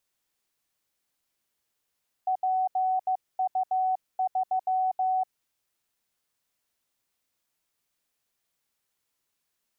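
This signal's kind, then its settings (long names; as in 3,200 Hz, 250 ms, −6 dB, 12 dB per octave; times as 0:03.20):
Morse code "PU3" 15 words per minute 749 Hz −22.5 dBFS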